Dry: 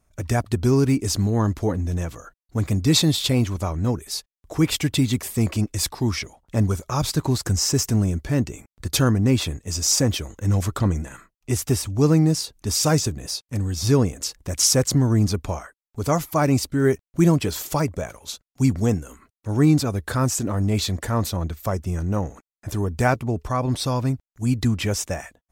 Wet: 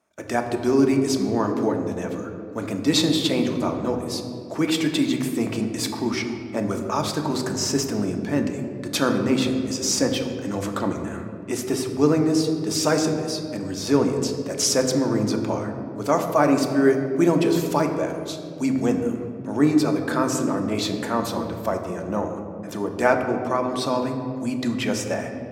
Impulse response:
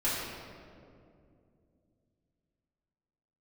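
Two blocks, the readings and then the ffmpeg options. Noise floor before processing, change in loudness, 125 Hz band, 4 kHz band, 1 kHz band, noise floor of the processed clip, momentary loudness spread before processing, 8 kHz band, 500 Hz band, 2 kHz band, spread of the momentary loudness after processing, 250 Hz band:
under -85 dBFS, -1.0 dB, -9.5 dB, -1.5 dB, +2.5 dB, -34 dBFS, 11 LU, -4.0 dB, +3.5 dB, +2.0 dB, 10 LU, +1.0 dB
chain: -filter_complex "[0:a]highpass=350,aemphasis=mode=reproduction:type=cd,asplit=2[a][b];[1:a]atrim=start_sample=2205,lowshelf=f=380:g=9.5[c];[b][c]afir=irnorm=-1:irlink=0,volume=-12.5dB[d];[a][d]amix=inputs=2:normalize=0"

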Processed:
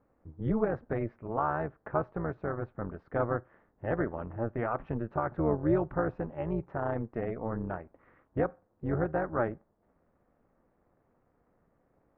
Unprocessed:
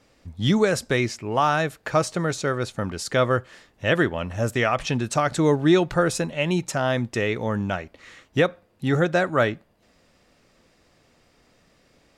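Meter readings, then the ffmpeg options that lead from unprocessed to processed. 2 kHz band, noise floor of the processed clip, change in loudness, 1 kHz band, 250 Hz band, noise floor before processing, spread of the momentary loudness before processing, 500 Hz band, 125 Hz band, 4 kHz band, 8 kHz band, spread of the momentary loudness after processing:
-15.5 dB, -73 dBFS, -10.0 dB, -9.0 dB, -9.5 dB, -62 dBFS, 8 LU, -9.0 dB, -9.0 dB, under -35 dB, under -40 dB, 8 LU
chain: -af "lowpass=f=1.4k:w=0.5412,lowpass=f=1.4k:w=1.3066,tremolo=f=230:d=0.788,volume=-5.5dB"

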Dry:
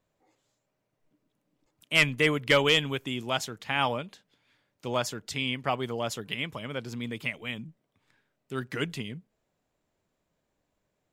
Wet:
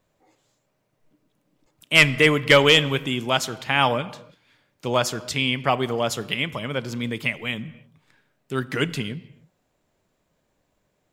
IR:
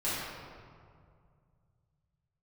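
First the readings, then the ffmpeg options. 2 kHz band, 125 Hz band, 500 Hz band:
+7.5 dB, +8.0 dB, +7.5 dB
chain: -filter_complex "[0:a]asplit=2[a][b];[1:a]atrim=start_sample=2205,afade=t=out:st=0.37:d=0.01,atrim=end_sample=16758[c];[b][c]afir=irnorm=-1:irlink=0,volume=-23dB[d];[a][d]amix=inputs=2:normalize=0,volume=7dB"

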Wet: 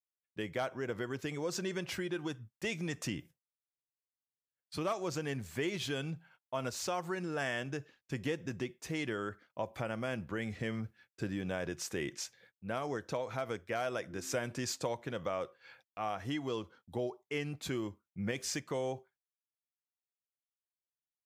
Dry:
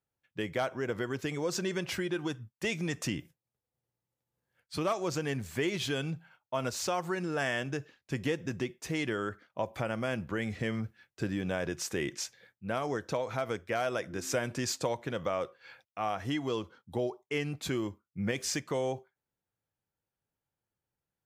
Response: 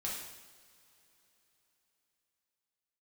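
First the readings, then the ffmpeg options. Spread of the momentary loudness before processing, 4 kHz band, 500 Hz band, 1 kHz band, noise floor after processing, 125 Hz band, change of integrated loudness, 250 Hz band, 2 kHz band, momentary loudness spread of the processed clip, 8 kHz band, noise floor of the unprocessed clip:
7 LU, -4.0 dB, -4.0 dB, -4.0 dB, under -85 dBFS, -4.0 dB, -4.0 dB, -4.0 dB, -4.0 dB, 7 LU, -4.0 dB, under -85 dBFS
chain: -af "agate=range=-23dB:threshold=-59dB:ratio=16:detection=peak,volume=-4dB"

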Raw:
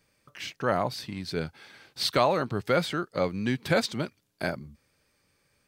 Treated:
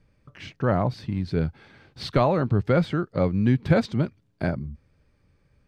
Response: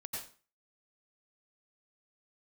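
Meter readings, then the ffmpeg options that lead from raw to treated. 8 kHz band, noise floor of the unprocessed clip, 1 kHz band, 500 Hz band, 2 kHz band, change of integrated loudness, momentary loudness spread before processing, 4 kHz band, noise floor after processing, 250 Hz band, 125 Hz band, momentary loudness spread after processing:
under -10 dB, -71 dBFS, 0.0 dB, +2.5 dB, -2.0 dB, +4.0 dB, 14 LU, -7.0 dB, -67 dBFS, +7.5 dB, +11.0 dB, 12 LU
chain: -af "aemphasis=mode=reproduction:type=riaa"

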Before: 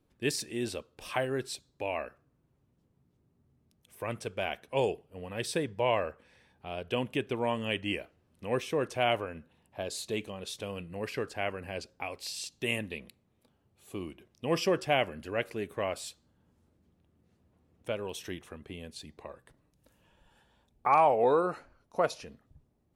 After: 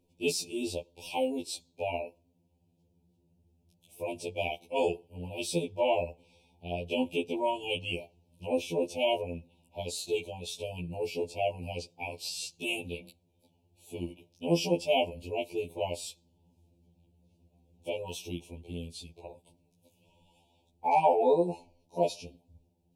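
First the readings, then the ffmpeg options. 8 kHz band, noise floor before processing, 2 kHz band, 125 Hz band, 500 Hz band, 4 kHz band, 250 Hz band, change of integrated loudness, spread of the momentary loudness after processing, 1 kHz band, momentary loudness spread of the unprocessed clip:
+1.5 dB, -72 dBFS, -3.0 dB, -0.5 dB, +1.0 dB, +1.0 dB, +1.0 dB, 0.0 dB, 15 LU, -1.0 dB, 16 LU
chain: -af "asuperstop=centerf=1500:order=20:qfactor=1.1,afftfilt=real='re*2*eq(mod(b,4),0)':imag='im*2*eq(mod(b,4),0)':win_size=2048:overlap=0.75,volume=3.5dB"

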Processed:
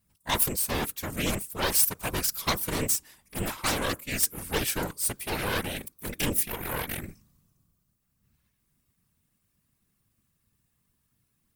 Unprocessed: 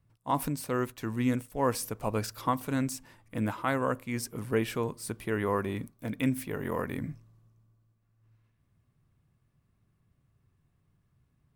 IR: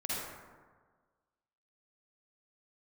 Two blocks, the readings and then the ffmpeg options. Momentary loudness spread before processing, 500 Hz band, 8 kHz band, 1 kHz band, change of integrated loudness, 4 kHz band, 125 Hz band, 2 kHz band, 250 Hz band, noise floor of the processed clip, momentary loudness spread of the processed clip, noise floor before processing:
8 LU, -2.5 dB, +13.5 dB, -1.0 dB, +4.5 dB, +13.0 dB, -1.5 dB, +5.5 dB, -4.0 dB, -75 dBFS, 10 LU, -73 dBFS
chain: -af "aeval=exprs='0.188*(cos(1*acos(clip(val(0)/0.188,-1,1)))-cos(1*PI/2))+0.0596*(cos(6*acos(clip(val(0)/0.188,-1,1)))-cos(6*PI/2))':c=same,afftfilt=real='hypot(re,im)*cos(2*PI*random(0))':imag='hypot(re,im)*sin(2*PI*random(1))':win_size=512:overlap=0.75,crystalizer=i=7:c=0"

